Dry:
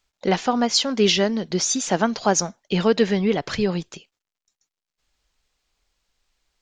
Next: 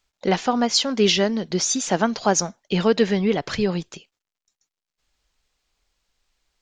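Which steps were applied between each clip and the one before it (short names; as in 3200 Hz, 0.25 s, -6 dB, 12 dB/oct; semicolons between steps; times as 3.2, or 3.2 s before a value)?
nothing audible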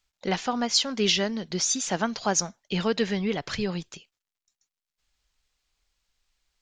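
bell 410 Hz -5.5 dB 2.8 oct; gain -2.5 dB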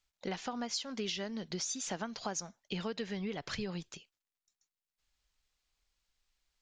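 compressor 6:1, threshold -29 dBFS, peak gain reduction 11 dB; gain -5.5 dB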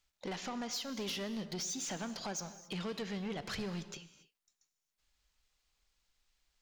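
soft clip -37.5 dBFS, distortion -10 dB; non-linear reverb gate 0.3 s flat, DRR 11 dB; gain +2.5 dB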